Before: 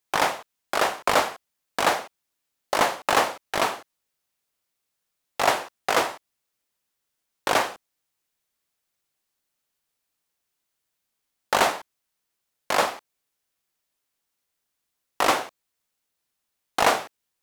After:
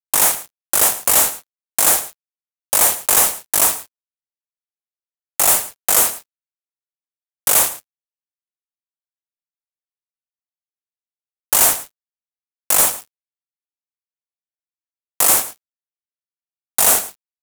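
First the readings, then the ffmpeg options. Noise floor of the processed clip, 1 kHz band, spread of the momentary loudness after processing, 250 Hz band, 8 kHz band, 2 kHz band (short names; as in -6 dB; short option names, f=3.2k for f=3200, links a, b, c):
under -85 dBFS, -2.0 dB, 14 LU, -0.5 dB, +20.0 dB, -0.5 dB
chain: -filter_complex "[0:a]aexciter=amount=15.9:drive=6.7:freq=6.7k,acrusher=bits=2:mix=0:aa=0.5,volume=13dB,asoftclip=hard,volume=-13dB,asplit=2[a][b];[b]aecho=0:1:109:0.178[c];[a][c]amix=inputs=2:normalize=0,volume=3.5dB"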